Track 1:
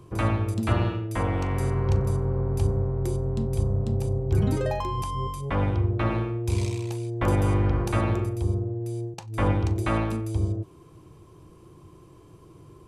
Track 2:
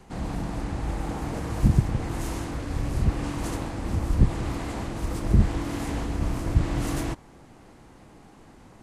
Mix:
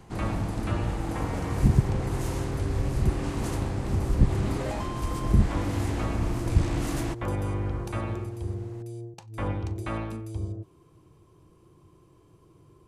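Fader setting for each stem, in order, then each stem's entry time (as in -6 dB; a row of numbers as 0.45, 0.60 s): -7.0, -1.5 dB; 0.00, 0.00 s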